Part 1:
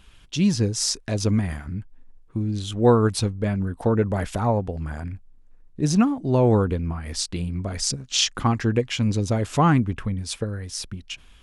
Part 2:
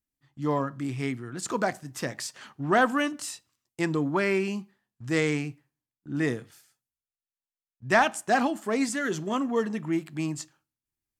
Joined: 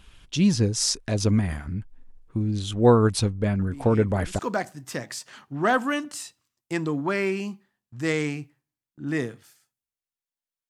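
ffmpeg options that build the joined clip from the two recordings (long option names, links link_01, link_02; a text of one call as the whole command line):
ffmpeg -i cue0.wav -i cue1.wav -filter_complex "[1:a]asplit=2[link_01][link_02];[0:a]apad=whole_dur=10.69,atrim=end=10.69,atrim=end=4.392[link_03];[link_02]atrim=start=1.468:end=7.77[link_04];[link_01]atrim=start=0.67:end=1.47,asetpts=PTS-STARTPTS,volume=-10dB,afade=type=in:duration=0.004:curve=hsin,afade=type=out:start_time=0.796:duration=0.004:curve=hsin,adelay=3590[link_05];[link_03][link_04]acrossfade=duration=0.004:curve1=hsin:curve2=hsin[link_06];[link_06][link_05]amix=inputs=2:normalize=0" out.wav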